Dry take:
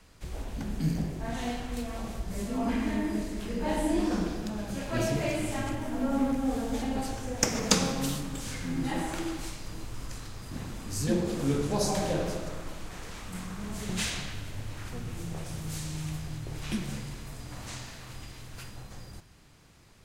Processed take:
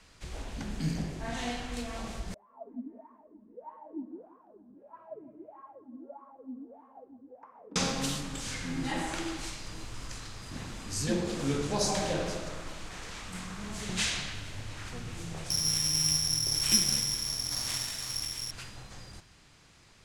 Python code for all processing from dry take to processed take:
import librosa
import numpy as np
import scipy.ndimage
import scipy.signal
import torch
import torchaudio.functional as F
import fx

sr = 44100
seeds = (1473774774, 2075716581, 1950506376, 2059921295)

y = fx.chain(x, sr, fx.lowpass(hz=1400.0, slope=12),
    fx.wah_lfo(hz=1.6, low_hz=240.0, high_hz=1100.0, q=20.0),
    fx.echo_feedback(ms=168, feedback_pct=42, wet_db=-17), at=(2.34, 7.76))
y = fx.chain(y, sr, fx.peak_eq(hz=5100.0, db=12.0, octaves=1.1),
    fx.resample_bad(factor=8, down='filtered', up='zero_stuff'), at=(15.5, 18.51))
y = scipy.signal.sosfilt(scipy.signal.butter(2, 8300.0, 'lowpass', fs=sr, output='sos'), y)
y = fx.tilt_shelf(y, sr, db=-3.5, hz=970.0)